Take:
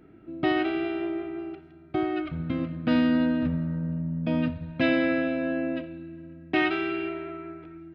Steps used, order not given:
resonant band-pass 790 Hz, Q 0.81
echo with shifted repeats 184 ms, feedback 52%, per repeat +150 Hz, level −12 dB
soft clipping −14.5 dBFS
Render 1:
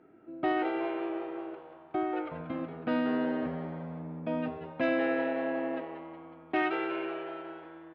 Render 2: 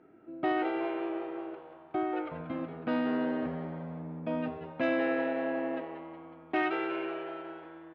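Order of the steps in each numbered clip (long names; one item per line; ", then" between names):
resonant band-pass, then echo with shifted repeats, then soft clipping
soft clipping, then resonant band-pass, then echo with shifted repeats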